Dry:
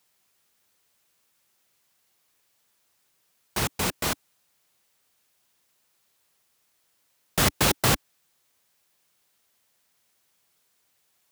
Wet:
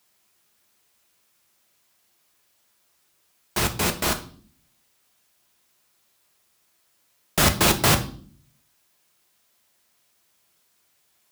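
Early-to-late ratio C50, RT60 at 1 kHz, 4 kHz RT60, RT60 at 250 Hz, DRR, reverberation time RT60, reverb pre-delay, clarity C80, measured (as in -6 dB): 14.0 dB, 0.45 s, 0.45 s, n/a, 5.5 dB, 0.50 s, 3 ms, 18.5 dB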